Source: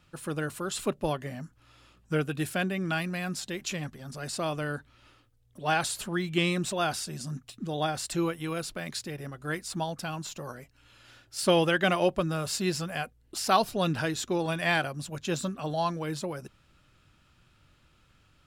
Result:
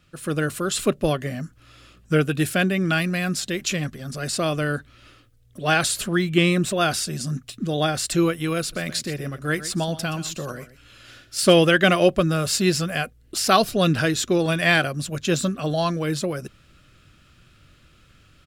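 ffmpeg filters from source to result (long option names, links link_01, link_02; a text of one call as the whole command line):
ffmpeg -i in.wav -filter_complex "[0:a]asettb=1/sr,asplit=3[link_01][link_02][link_03];[link_01]atrim=end=6.244[link_04];[link_02]atrim=start=6.24:end=6.81,asetpts=PTS-STARTPTS,afade=type=in:duration=0.004:curve=qsin,afade=type=out:start_time=0.566:duration=0.004:curve=qsin,equalizer=frequency=5300:width=0.7:gain=-5[link_05];[link_03]atrim=start=6.806[link_06];[link_04][link_05]acrossfade=duration=0.004:curve1=hsin:curve2=qsin[link_07];[link_07][link_06]acrossfade=duration=0.004:curve1=qsin:curve2=hsin,asplit=3[link_08][link_09][link_10];[link_08]afade=type=out:start_time=8.72:duration=0.02[link_11];[link_09]aecho=1:1:123:0.188,afade=type=in:start_time=8.72:duration=0.02,afade=type=out:start_time=11.52:duration=0.02[link_12];[link_10]afade=type=in:start_time=11.52:duration=0.02[link_13];[link_11][link_12][link_13]amix=inputs=3:normalize=0,equalizer=frequency=890:width_type=o:width=0.36:gain=-12,dynaudnorm=framelen=160:gausssize=3:maxgain=6dB,volume=3dB" out.wav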